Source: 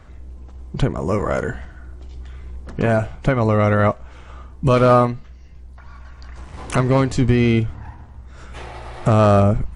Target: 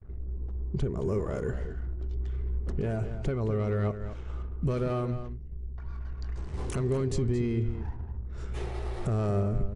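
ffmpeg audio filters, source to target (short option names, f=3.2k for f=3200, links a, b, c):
-filter_complex "[0:a]asoftclip=type=tanh:threshold=-9.5dB,alimiter=limit=-21dB:level=0:latency=1:release=182,asplit=2[a][b];[b]adelay=221.6,volume=-10dB,highshelf=f=4k:g=-4.99[c];[a][c]amix=inputs=2:normalize=0,anlmdn=0.01,bass=f=250:g=10,treble=f=4k:g=5,agate=range=-31dB:threshold=-35dB:ratio=16:detection=peak,equalizer=f=400:w=3.7:g=13.5,volume=-9dB"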